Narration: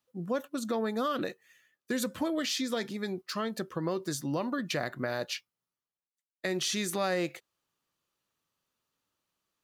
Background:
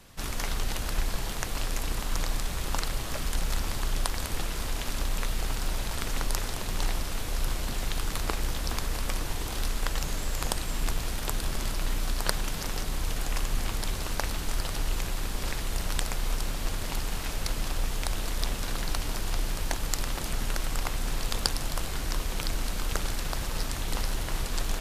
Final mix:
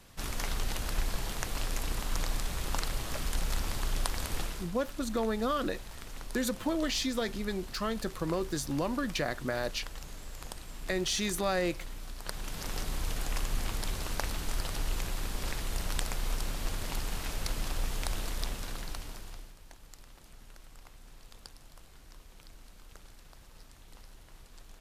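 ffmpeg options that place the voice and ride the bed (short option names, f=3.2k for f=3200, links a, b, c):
-filter_complex "[0:a]adelay=4450,volume=0dB[a];[1:a]volume=7dB,afade=t=out:st=4.41:d=0.28:silence=0.298538,afade=t=in:st=12.22:d=0.56:silence=0.316228,afade=t=out:st=18.15:d=1.39:silence=0.105925[b];[a][b]amix=inputs=2:normalize=0"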